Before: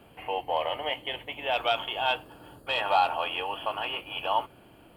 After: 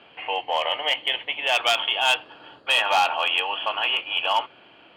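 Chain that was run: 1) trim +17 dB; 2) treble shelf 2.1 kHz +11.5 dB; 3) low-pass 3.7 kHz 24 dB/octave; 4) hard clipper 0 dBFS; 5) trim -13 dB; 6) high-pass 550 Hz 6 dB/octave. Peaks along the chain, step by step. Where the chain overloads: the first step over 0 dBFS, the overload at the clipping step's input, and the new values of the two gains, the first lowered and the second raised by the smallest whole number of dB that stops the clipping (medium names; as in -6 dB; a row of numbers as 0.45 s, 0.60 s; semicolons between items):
+6.0 dBFS, +10.5 dBFS, +9.5 dBFS, 0.0 dBFS, -13.0 dBFS, -9.5 dBFS; step 1, 9.5 dB; step 1 +7 dB, step 5 -3 dB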